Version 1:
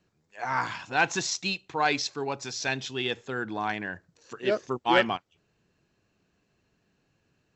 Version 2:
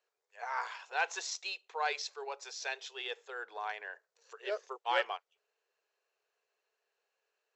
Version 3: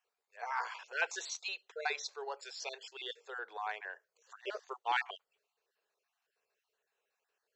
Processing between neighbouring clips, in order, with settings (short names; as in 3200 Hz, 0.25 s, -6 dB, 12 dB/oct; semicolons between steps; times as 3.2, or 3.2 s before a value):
elliptic high-pass 430 Hz, stop band 40 dB; gain -8 dB
random spectral dropouts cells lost 28%